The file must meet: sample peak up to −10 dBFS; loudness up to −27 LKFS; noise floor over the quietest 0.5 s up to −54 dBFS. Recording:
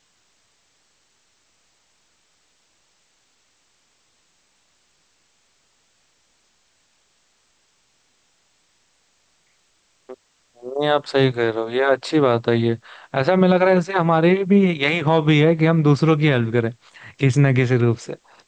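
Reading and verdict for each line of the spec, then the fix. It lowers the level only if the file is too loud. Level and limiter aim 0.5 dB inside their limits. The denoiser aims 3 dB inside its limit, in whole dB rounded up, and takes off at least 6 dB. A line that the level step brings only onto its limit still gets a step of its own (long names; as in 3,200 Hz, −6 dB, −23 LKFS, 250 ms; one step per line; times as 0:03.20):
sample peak −5.0 dBFS: out of spec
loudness −18.0 LKFS: out of spec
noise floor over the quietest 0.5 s −63 dBFS: in spec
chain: level −9.5 dB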